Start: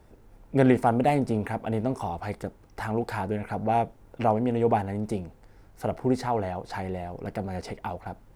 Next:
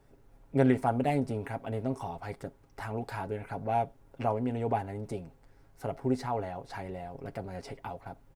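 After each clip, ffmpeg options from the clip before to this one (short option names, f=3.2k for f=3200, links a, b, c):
-af "aecho=1:1:7.3:0.52,volume=-7dB"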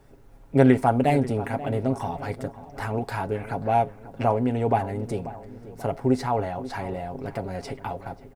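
-filter_complex "[0:a]asplit=2[a][b];[b]adelay=536,lowpass=f=1.8k:p=1,volume=-14.5dB,asplit=2[c][d];[d]adelay=536,lowpass=f=1.8k:p=1,volume=0.49,asplit=2[e][f];[f]adelay=536,lowpass=f=1.8k:p=1,volume=0.49,asplit=2[g][h];[h]adelay=536,lowpass=f=1.8k:p=1,volume=0.49,asplit=2[i][j];[j]adelay=536,lowpass=f=1.8k:p=1,volume=0.49[k];[a][c][e][g][i][k]amix=inputs=6:normalize=0,volume=7.5dB"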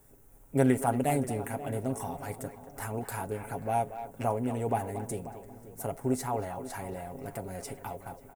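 -filter_complex "[0:a]aexciter=amount=7.2:drive=4.8:freq=6.6k,asplit=2[a][b];[b]adelay=230,highpass=300,lowpass=3.4k,asoftclip=type=hard:threshold=-13.5dB,volume=-11dB[c];[a][c]amix=inputs=2:normalize=0,volume=-7.5dB"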